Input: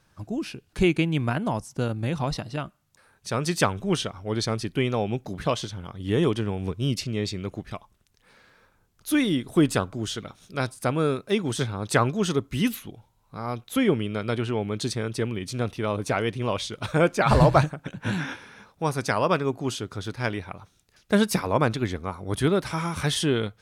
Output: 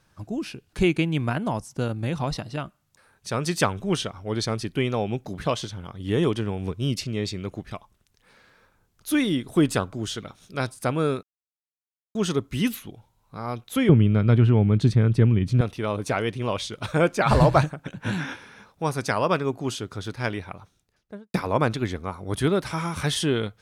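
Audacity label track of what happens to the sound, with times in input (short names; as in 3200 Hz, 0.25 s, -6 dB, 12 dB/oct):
11.230000	12.150000	mute
13.890000	15.610000	tone controls bass +15 dB, treble -11 dB
20.500000	21.340000	studio fade out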